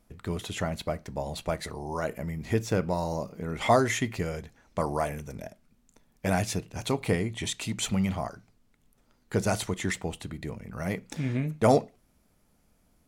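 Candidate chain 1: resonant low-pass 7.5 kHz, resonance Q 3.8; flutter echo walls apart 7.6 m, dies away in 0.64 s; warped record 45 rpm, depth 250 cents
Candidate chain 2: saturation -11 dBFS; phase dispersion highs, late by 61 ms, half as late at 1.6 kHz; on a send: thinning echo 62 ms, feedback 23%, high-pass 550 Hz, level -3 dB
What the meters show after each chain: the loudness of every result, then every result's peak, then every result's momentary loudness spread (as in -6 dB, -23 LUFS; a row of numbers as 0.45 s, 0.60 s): -27.0 LUFS, -29.5 LUFS; -6.0 dBFS, -8.0 dBFS; 13 LU, 13 LU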